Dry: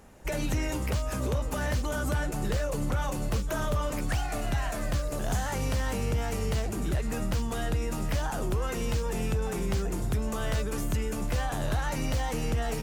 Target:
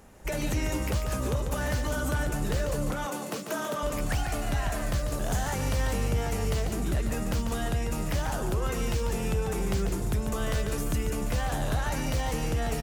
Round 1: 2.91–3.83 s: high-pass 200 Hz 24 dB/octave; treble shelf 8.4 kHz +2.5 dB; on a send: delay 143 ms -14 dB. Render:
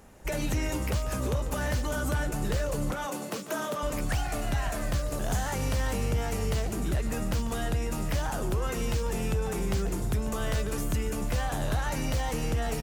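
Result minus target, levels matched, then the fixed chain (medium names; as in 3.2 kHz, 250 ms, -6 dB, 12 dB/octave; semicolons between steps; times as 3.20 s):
echo-to-direct -7 dB
2.91–3.83 s: high-pass 200 Hz 24 dB/octave; treble shelf 8.4 kHz +2.5 dB; on a send: delay 143 ms -7 dB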